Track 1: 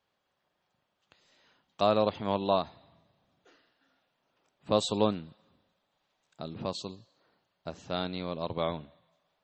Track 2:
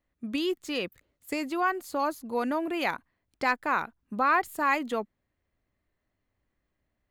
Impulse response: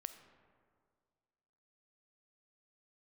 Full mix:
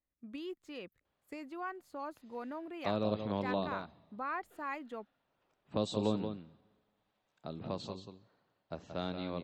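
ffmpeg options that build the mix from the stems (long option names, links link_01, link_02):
-filter_complex "[0:a]acrossover=split=410|3000[link_01][link_02][link_03];[link_02]acompressor=threshold=-33dB:ratio=6[link_04];[link_01][link_04][link_03]amix=inputs=3:normalize=0,adelay=1050,volume=-4dB,asplit=3[link_05][link_06][link_07];[link_06]volume=-16dB[link_08];[link_07]volume=-7dB[link_09];[1:a]volume=-13.5dB[link_10];[2:a]atrim=start_sample=2205[link_11];[link_08][link_11]afir=irnorm=-1:irlink=0[link_12];[link_09]aecho=0:1:179:1[link_13];[link_05][link_10][link_12][link_13]amix=inputs=4:normalize=0,highshelf=frequency=4100:gain=-11"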